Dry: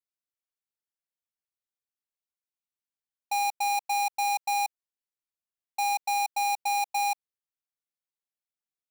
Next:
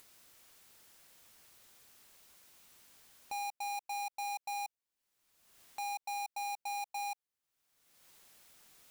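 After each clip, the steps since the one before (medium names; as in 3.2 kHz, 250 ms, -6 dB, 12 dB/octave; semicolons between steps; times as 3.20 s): upward compressor, threshold -34 dBFS; peak limiter -36 dBFS, peak gain reduction 10 dB; trim -1.5 dB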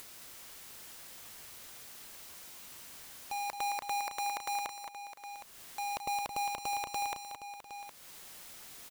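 integer overflow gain 41 dB; multi-tap echo 218/219/699/763 ms -8/-17/-17/-12 dB; trim +11 dB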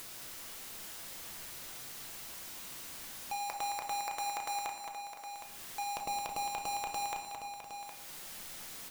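companding laws mixed up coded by mu; simulated room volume 320 m³, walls mixed, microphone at 0.71 m; trim -2.5 dB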